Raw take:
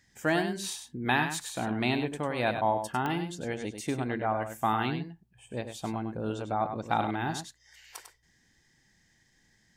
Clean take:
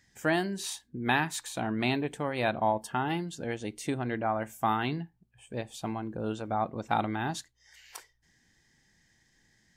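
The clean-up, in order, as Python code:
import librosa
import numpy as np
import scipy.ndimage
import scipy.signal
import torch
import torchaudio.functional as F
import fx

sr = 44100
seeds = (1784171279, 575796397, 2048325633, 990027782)

y = fx.fix_declick_ar(x, sr, threshold=10.0)
y = fx.fix_echo_inverse(y, sr, delay_ms=99, level_db=-8.0)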